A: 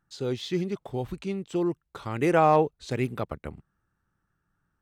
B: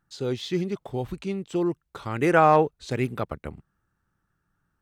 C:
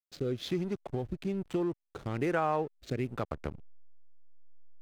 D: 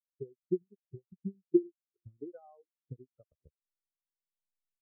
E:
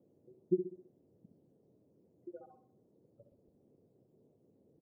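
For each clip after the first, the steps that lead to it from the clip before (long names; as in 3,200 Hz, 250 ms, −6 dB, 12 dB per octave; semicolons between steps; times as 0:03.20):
dynamic equaliser 1,500 Hz, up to +6 dB, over −40 dBFS, Q 2; level +1.5 dB
slack as between gear wheels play −35 dBFS; rotating-speaker cabinet horn 1.1 Hz; downward compressor 3 to 1, threshold −35 dBFS, peak gain reduction 16 dB; level +3.5 dB
transient designer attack +11 dB, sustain −9 dB; single-tap delay 398 ms −17.5 dB; every bin expanded away from the loudest bin 4 to 1; level −4 dB
time-frequency cells dropped at random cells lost 74%; repeating echo 65 ms, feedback 45%, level −8.5 dB; noise in a band 98–490 Hz −69 dBFS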